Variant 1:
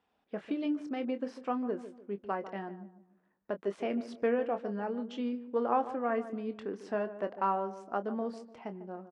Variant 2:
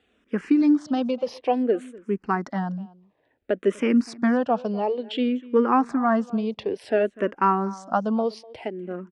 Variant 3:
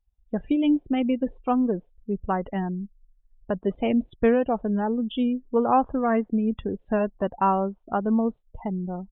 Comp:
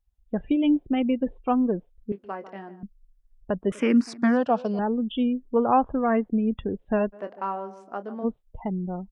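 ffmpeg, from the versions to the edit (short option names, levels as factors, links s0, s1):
-filter_complex "[0:a]asplit=2[s0][s1];[2:a]asplit=4[s2][s3][s4][s5];[s2]atrim=end=2.122[s6];[s0]atrim=start=2.118:end=2.832[s7];[s3]atrim=start=2.828:end=3.722[s8];[1:a]atrim=start=3.718:end=4.792[s9];[s4]atrim=start=4.788:end=7.14[s10];[s1]atrim=start=7.12:end=8.25[s11];[s5]atrim=start=8.23[s12];[s6][s7]acrossfade=d=0.004:c1=hsin:c2=hsin[s13];[s13][s8]acrossfade=d=0.004:c1=hsin:c2=hsin[s14];[s14][s9]acrossfade=d=0.004:c1=hsin:c2=hsin[s15];[s15][s10]acrossfade=d=0.004:c1=hsin:c2=hsin[s16];[s16][s11]acrossfade=d=0.02:c1=tri:c2=tri[s17];[s17][s12]acrossfade=d=0.02:c1=tri:c2=tri"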